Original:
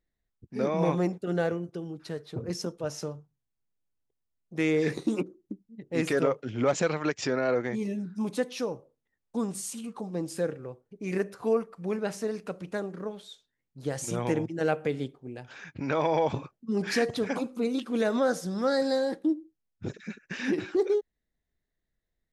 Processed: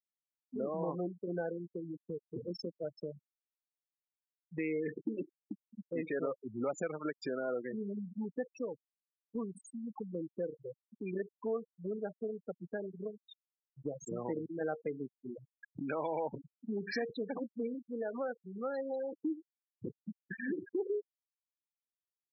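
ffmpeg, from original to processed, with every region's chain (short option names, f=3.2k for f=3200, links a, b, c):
-filter_complex "[0:a]asettb=1/sr,asplit=3[a][b][c];[a]atrim=end=17.744[d];[b]atrim=start=17.74:end=19.14,asetpts=PTS-STARTPTS,afade=t=in:d=0.004:c=qsin,afade=t=out:st=1.396:d=0.004:c=qsin,lowpass=f=1.1k:p=1,aemphasis=mode=production:type=riaa[e];[c]atrim=start=19.136[f];[d][e]acrossfade=d=0.004:c1=hsin:c2=qsin[g];[g][f]acrossfade=d=0.004:c1=qsin:c2=hsin,afftfilt=real='re*gte(hypot(re,im),0.0631)':imag='im*gte(hypot(re,im),0.0631)':win_size=1024:overlap=0.75,highpass=200,acompressor=threshold=-47dB:ratio=2,volume=3.5dB"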